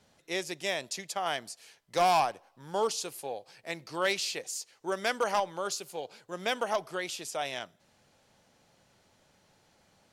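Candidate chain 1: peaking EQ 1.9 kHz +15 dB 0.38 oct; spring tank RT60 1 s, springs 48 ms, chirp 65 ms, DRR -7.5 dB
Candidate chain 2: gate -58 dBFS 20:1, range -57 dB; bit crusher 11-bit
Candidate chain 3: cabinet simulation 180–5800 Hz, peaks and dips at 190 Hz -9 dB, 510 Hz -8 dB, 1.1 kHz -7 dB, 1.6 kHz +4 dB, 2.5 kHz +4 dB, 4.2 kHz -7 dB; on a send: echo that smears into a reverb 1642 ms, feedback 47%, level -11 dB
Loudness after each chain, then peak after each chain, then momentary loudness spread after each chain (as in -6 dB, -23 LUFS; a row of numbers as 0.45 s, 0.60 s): -21.5 LUFS, -32.5 LUFS, -34.0 LUFS; -4.5 dBFS, -16.5 dBFS, -16.0 dBFS; 14 LU, 13 LU, 17 LU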